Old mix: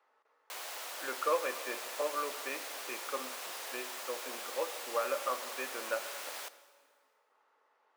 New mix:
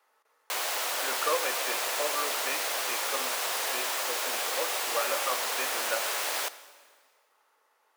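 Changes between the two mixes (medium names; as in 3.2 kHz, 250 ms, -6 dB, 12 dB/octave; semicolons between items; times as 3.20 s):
speech: remove tape spacing loss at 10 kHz 20 dB; background +12.0 dB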